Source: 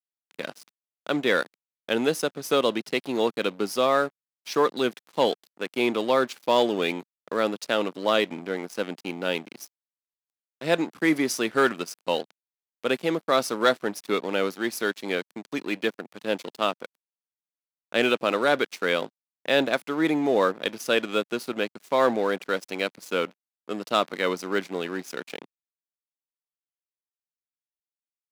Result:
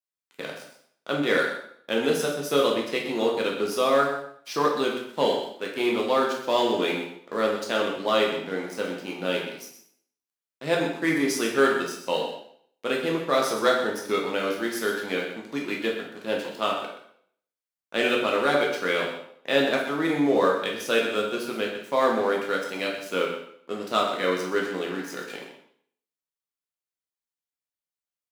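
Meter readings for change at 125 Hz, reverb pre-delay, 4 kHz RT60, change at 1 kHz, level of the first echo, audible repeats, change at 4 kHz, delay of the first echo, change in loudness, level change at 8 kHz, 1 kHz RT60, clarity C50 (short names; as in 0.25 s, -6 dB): +0.5 dB, 5 ms, 0.60 s, +0.5 dB, -10.0 dB, 1, 0.0 dB, 0.126 s, +0.5 dB, +0.5 dB, 0.65 s, 4.0 dB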